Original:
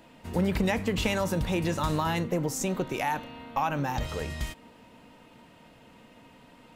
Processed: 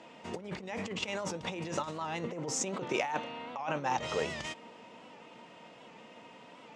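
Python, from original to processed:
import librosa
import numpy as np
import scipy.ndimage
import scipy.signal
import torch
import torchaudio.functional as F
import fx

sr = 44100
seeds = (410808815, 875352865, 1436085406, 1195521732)

y = fx.over_compress(x, sr, threshold_db=-31.0, ratio=-0.5)
y = fx.cabinet(y, sr, low_hz=240.0, low_slope=12, high_hz=7100.0, hz=(270.0, 1600.0, 4200.0), db=(-6, -4, -5))
y = fx.record_warp(y, sr, rpm=78.0, depth_cents=100.0)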